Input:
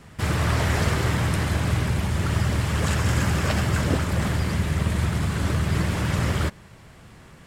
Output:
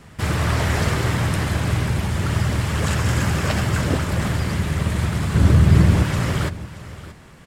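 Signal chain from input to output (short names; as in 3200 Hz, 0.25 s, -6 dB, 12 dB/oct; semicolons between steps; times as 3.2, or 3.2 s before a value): 5.34–6.03 low shelf 400 Hz +9.5 dB; echo 0.627 s -16 dB; gain +2 dB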